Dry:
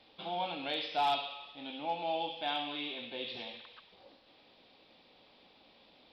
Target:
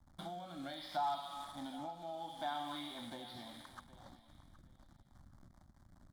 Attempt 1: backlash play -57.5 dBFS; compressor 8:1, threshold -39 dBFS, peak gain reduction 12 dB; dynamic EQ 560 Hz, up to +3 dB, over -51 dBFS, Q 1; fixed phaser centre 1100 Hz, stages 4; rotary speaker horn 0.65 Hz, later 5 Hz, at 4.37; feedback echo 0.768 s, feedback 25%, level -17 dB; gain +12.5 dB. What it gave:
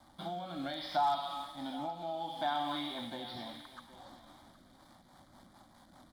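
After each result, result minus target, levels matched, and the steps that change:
compressor: peak gain reduction -6 dB; backlash: distortion -7 dB
change: compressor 8:1, threshold -46 dBFS, peak gain reduction 18 dB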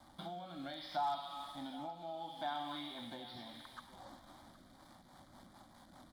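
backlash: distortion -7 dB
change: backlash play -49.5 dBFS

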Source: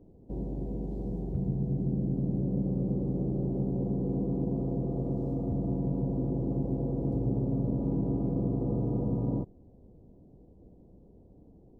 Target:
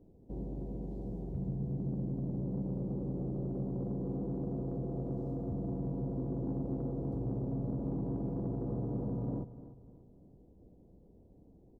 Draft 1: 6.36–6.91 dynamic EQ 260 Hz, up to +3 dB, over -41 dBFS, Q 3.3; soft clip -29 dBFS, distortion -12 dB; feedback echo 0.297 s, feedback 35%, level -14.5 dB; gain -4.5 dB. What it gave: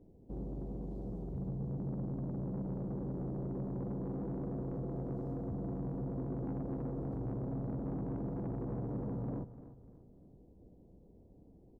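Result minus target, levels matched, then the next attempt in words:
soft clip: distortion +8 dB
6.36–6.91 dynamic EQ 260 Hz, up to +3 dB, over -41 dBFS, Q 3.3; soft clip -22.5 dBFS, distortion -20 dB; feedback echo 0.297 s, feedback 35%, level -14.5 dB; gain -4.5 dB

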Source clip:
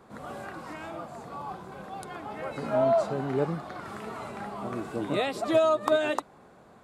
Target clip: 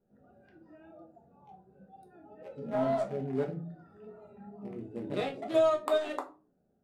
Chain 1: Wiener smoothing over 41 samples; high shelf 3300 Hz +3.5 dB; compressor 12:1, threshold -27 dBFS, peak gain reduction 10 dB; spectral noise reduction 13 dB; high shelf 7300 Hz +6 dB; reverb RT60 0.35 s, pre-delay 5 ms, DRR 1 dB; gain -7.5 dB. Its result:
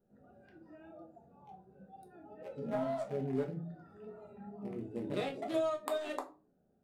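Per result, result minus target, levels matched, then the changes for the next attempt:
compressor: peak gain reduction +10 dB; 8000 Hz band +5.0 dB
remove: compressor 12:1, threshold -27 dBFS, peak gain reduction 10 dB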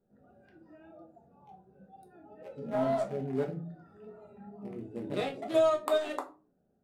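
8000 Hz band +3.0 dB
remove: second high shelf 7300 Hz +6 dB

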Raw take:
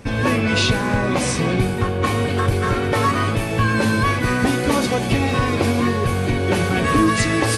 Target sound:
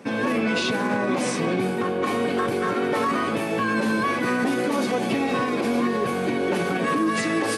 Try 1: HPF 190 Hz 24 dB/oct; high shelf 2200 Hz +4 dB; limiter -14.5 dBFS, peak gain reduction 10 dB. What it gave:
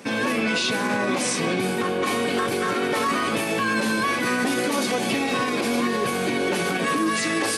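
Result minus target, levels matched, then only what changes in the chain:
4000 Hz band +4.5 dB
change: high shelf 2200 Hz -6.5 dB

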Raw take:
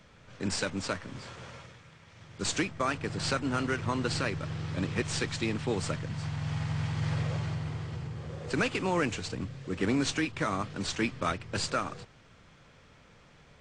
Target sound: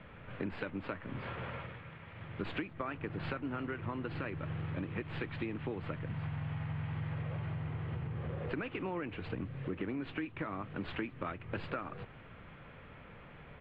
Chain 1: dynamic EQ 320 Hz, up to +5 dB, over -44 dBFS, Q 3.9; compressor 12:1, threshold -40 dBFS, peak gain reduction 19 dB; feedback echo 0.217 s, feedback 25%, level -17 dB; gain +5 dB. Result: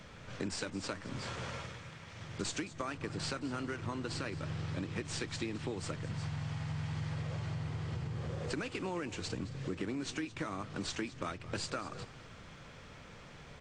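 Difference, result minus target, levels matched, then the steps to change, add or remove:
4000 Hz band +8.5 dB; echo-to-direct +11.5 dB
add after dynamic EQ: inverse Chebyshev low-pass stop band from 5500 Hz, stop band 40 dB; change: feedback echo 0.217 s, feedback 25%, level -28.5 dB

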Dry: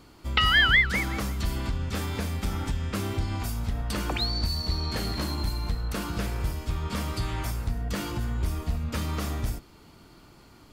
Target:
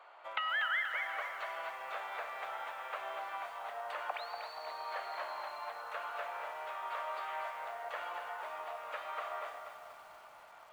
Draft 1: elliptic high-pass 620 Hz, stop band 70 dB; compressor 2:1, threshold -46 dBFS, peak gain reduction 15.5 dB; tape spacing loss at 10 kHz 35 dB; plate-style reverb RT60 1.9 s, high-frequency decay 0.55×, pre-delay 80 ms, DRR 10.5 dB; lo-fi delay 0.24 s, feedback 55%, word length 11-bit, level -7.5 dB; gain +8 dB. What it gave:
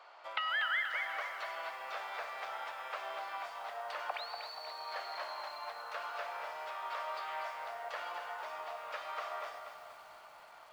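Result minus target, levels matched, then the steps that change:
4000 Hz band +2.5 dB
add after elliptic high-pass: bell 5200 Hz -14 dB 0.64 oct

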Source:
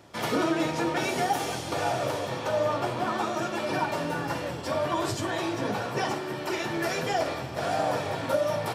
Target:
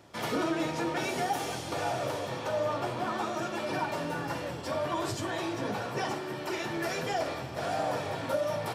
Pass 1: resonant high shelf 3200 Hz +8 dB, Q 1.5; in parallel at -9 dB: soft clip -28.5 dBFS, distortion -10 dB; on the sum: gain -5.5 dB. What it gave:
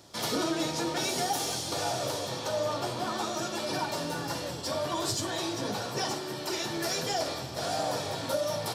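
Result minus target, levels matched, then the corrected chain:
8000 Hz band +8.0 dB
in parallel at -9 dB: soft clip -28.5 dBFS, distortion -10 dB; on the sum: gain -5.5 dB

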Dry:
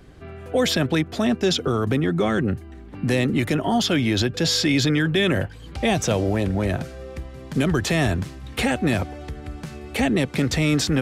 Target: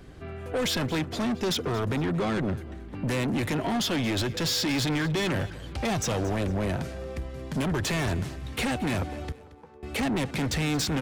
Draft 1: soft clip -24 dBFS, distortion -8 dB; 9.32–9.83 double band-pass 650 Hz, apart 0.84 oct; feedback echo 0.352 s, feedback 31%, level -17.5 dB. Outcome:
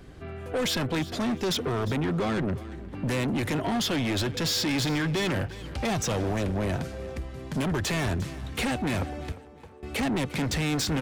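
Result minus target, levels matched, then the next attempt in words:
echo 0.125 s late
soft clip -24 dBFS, distortion -8 dB; 9.32–9.83 double band-pass 650 Hz, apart 0.84 oct; feedback echo 0.227 s, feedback 31%, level -17.5 dB

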